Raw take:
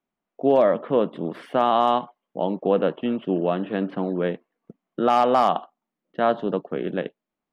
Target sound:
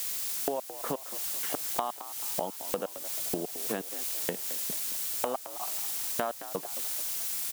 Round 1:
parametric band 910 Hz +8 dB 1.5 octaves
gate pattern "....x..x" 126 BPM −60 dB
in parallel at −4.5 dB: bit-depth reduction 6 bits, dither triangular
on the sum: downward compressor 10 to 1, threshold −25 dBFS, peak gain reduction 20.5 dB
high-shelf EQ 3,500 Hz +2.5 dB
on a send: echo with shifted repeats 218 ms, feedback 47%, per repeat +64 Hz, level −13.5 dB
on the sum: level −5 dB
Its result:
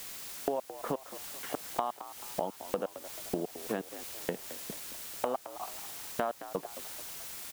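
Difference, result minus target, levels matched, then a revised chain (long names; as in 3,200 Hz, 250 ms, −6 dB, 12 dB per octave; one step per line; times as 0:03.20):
8,000 Hz band −3.5 dB
parametric band 910 Hz +8 dB 1.5 octaves
gate pattern "....x..x" 126 BPM −60 dB
in parallel at −4.5 dB: bit-depth reduction 6 bits, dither triangular
on the sum: downward compressor 10 to 1, threshold −25 dBFS, peak gain reduction 20.5 dB
high-shelf EQ 3,500 Hz +13.5 dB
on a send: echo with shifted repeats 218 ms, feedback 47%, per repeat +64 Hz, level −13.5 dB
on the sum: level −5 dB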